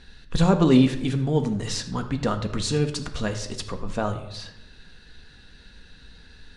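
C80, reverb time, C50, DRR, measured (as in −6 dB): 13.5 dB, 0.80 s, 10.5 dB, 5.0 dB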